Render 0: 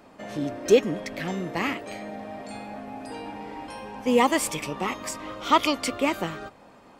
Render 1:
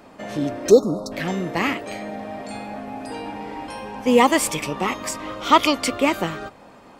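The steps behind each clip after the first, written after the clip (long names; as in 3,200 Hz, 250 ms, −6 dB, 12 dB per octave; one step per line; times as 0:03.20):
time-frequency box erased 0:00.70–0:01.12, 1,400–3,600 Hz
level +5 dB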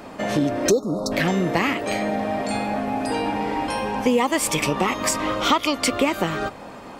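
downward compressor 6 to 1, threshold −25 dBFS, peak gain reduction 17 dB
level +8 dB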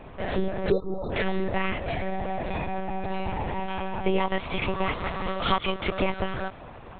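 one-pitch LPC vocoder at 8 kHz 190 Hz
level −4.5 dB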